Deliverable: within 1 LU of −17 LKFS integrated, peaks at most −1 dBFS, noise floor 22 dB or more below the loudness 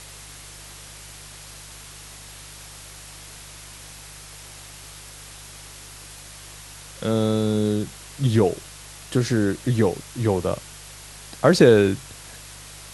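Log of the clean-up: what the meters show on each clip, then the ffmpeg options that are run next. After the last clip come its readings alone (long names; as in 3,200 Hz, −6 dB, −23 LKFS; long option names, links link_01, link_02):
mains hum 50 Hz; hum harmonics up to 150 Hz; level of the hum −47 dBFS; background noise floor −42 dBFS; target noise floor −44 dBFS; integrated loudness −21.5 LKFS; sample peak −2.0 dBFS; target loudness −17.0 LKFS
→ -af "bandreject=frequency=50:width_type=h:width=4,bandreject=frequency=100:width_type=h:width=4,bandreject=frequency=150:width_type=h:width=4"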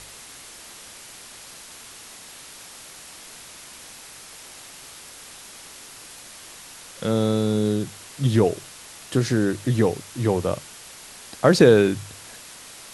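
mains hum none found; background noise floor −43 dBFS; target noise floor −44 dBFS
→ -af "afftdn=noise_reduction=6:noise_floor=-43"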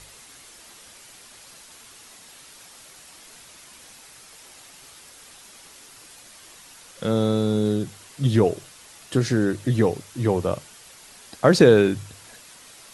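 background noise floor −48 dBFS; integrated loudness −21.5 LKFS; sample peak −2.0 dBFS; target loudness −17.0 LKFS
→ -af "volume=4.5dB,alimiter=limit=-1dB:level=0:latency=1"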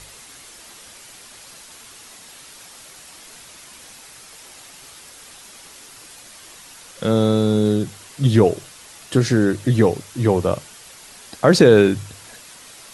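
integrated loudness −17.5 LKFS; sample peak −1.0 dBFS; background noise floor −43 dBFS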